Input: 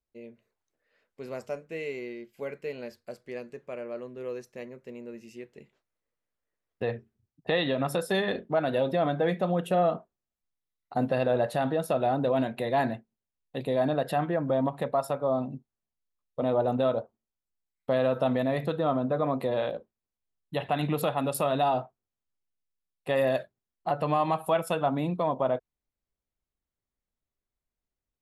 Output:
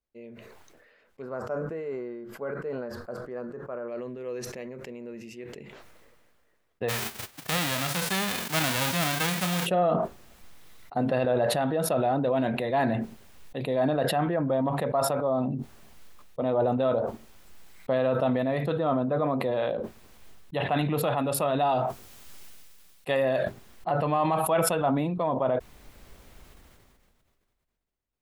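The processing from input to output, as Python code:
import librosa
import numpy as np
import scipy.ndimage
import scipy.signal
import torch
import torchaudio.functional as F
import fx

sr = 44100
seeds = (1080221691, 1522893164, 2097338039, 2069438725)

y = fx.high_shelf_res(x, sr, hz=1800.0, db=-9.5, q=3.0, at=(1.22, 3.88))
y = fx.pre_swell(y, sr, db_per_s=31.0, at=(4.54, 5.15))
y = fx.envelope_flatten(y, sr, power=0.1, at=(6.88, 9.65), fade=0.02)
y = fx.high_shelf(y, sr, hz=2900.0, db=10.0, at=(21.69, 23.17))
y = fx.bass_treble(y, sr, bass_db=-1, treble_db=-6)
y = fx.sustainer(y, sr, db_per_s=26.0)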